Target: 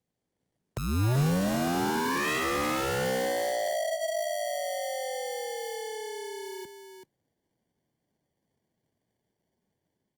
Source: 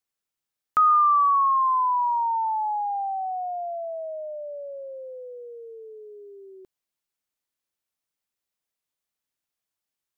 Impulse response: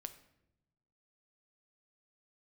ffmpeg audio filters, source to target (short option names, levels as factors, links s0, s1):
-filter_complex "[0:a]acrusher=samples=34:mix=1:aa=0.000001,dynaudnorm=f=100:g=5:m=1.58,asoftclip=type=tanh:threshold=0.178,acrossover=split=190|760[s0][s1][s2];[s0]acompressor=threshold=0.0224:ratio=4[s3];[s1]acompressor=threshold=0.0708:ratio=4[s4];[s2]acompressor=threshold=0.0126:ratio=4[s5];[s3][s4][s5]amix=inputs=3:normalize=0,asettb=1/sr,asplit=3[s6][s7][s8];[s6]atrim=end=0.884[s9];[s7]atrim=start=0.88:end=3.05,asetpts=PTS-STARTPTS,afade=t=in:d=0.004:c=qsin,afade=t=out:st=2.166:d=0.004:c=qsin,equalizer=f=380:t=o:w=0.29:g=9.5[s10];[s8]atrim=start=3.046[s11];[s9][s10]acrossfade=d=0.004:c1=hsin:c2=qsin[s12];[s12][s11]acrossfade=d=0.004:c1=qsin:c2=hsin,aecho=1:1:383:0.398,aeval=exprs='0.0596*(abs(mod(val(0)/0.0596+3,4)-2)-1)':c=same,highpass=110,bass=f=250:g=8,treble=f=4000:g=5" -ar 48000 -c:a libopus -b:a 32k